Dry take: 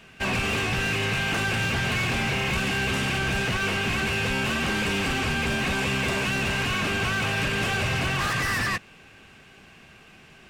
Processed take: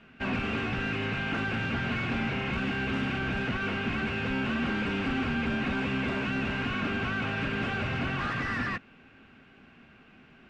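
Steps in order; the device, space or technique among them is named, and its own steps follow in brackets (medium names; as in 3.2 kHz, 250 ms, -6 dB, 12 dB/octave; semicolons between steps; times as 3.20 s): inside a cardboard box (low-pass 2.9 kHz 12 dB/octave; small resonant body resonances 250/1400 Hz, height 10 dB, ringing for 45 ms); trim -6 dB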